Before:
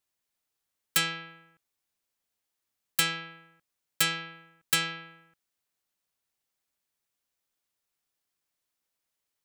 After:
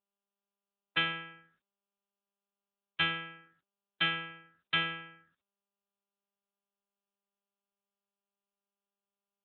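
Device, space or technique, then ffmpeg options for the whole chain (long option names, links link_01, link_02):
mobile call with aggressive noise cancelling: -af "highpass=frequency=120:poles=1,afftdn=noise_reduction=23:noise_floor=-57" -ar 8000 -c:a libopencore_amrnb -b:a 10200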